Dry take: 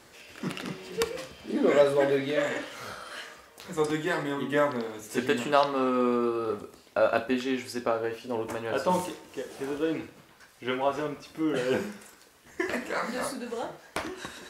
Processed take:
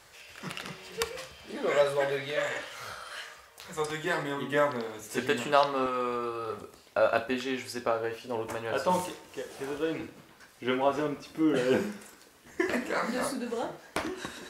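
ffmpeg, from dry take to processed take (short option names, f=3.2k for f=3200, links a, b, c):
-af "asetnsamples=n=441:p=0,asendcmd='4.04 equalizer g -4.5;5.86 equalizer g -14;6.57 equalizer g -5;10 equalizer g 3',equalizer=f=270:t=o:w=1.2:g=-14"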